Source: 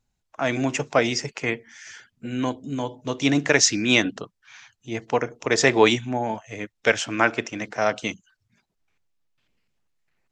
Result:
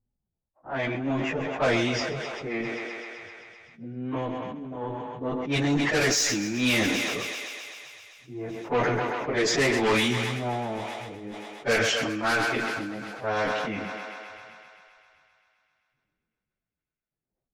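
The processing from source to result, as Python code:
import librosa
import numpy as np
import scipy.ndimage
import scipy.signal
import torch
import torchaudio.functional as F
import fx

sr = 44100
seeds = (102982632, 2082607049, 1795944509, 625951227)

y = fx.high_shelf(x, sr, hz=3600.0, db=-4.5)
y = fx.cheby_harmonics(y, sr, harmonics=(5, 6, 7), levels_db=(-7, -30, -9), full_scale_db=-3.0)
y = fx.env_lowpass(y, sr, base_hz=550.0, full_db=-12.5)
y = fx.stretch_vocoder_free(y, sr, factor=1.7)
y = 10.0 ** (-14.5 / 20.0) * np.tanh(y / 10.0 ** (-14.5 / 20.0))
y = fx.echo_thinned(y, sr, ms=130, feedback_pct=78, hz=290.0, wet_db=-14.5)
y = fx.sustainer(y, sr, db_per_s=21.0)
y = F.gain(torch.from_numpy(y), -3.0).numpy()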